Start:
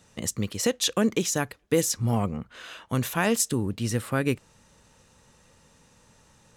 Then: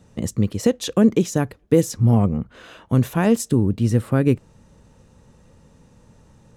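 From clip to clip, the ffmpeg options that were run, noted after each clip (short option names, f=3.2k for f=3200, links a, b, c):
-af "tiltshelf=f=770:g=7.5,volume=3dB"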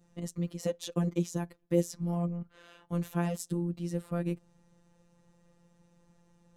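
-af "afftfilt=real='hypot(re,im)*cos(PI*b)':imag='0':win_size=1024:overlap=0.75,adynamicequalizer=threshold=0.00631:dfrequency=1800:dqfactor=0.84:tfrequency=1800:tqfactor=0.84:attack=5:release=100:ratio=0.375:range=2:mode=cutabove:tftype=bell,volume=-9dB"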